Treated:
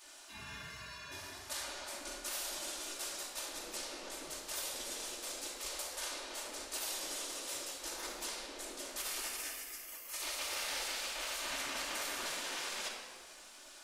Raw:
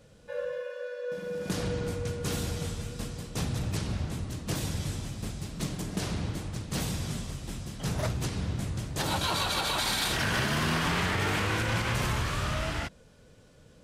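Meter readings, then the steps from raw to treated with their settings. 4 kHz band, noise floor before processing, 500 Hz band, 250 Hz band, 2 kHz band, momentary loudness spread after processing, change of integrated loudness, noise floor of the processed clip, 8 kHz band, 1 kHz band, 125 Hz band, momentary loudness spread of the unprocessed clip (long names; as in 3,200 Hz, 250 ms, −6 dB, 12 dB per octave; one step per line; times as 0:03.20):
−6.5 dB, −56 dBFS, −13.0 dB, −20.0 dB, −9.5 dB, 9 LU, −8.5 dB, −54 dBFS, −0.5 dB, −11.5 dB, below −30 dB, 10 LU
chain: high-pass filter 79 Hz 12 dB per octave
bass and treble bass +13 dB, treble +8 dB
reversed playback
downward compressor 10 to 1, threshold −33 dBFS, peak gain reduction 17 dB
reversed playback
gate on every frequency bin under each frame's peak −25 dB weak
rectangular room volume 2,100 cubic metres, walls mixed, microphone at 2.6 metres
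level +4.5 dB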